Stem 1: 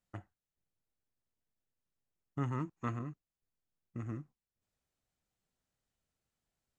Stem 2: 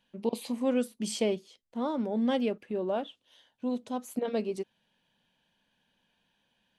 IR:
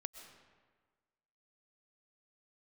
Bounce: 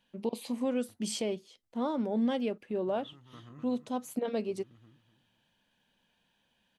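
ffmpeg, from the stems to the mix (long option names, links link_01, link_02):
-filter_complex "[0:a]acompressor=threshold=-43dB:ratio=2.5,adelay=500,volume=-2dB,asplit=2[link_01][link_02];[link_02]volume=-12.5dB[link_03];[1:a]volume=0dB,asplit=2[link_04][link_05];[link_05]apad=whole_len=321445[link_06];[link_01][link_06]sidechaincompress=threshold=-42dB:ratio=8:attack=16:release=597[link_07];[link_03]aecho=0:1:249|498|747|996:1|0.27|0.0729|0.0197[link_08];[link_07][link_04][link_08]amix=inputs=3:normalize=0,alimiter=limit=-21.5dB:level=0:latency=1:release=374"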